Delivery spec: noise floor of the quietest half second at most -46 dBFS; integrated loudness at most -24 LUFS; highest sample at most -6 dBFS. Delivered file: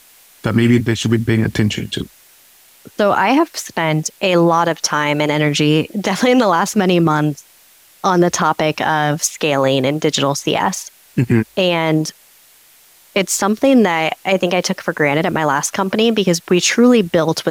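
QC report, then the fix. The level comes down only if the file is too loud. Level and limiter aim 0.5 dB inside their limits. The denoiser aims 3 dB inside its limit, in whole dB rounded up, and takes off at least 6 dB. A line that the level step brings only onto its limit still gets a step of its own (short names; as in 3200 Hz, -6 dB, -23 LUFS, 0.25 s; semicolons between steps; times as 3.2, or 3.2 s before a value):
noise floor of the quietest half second -48 dBFS: OK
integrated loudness -15.5 LUFS: fail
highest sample -3.0 dBFS: fail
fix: gain -9 dB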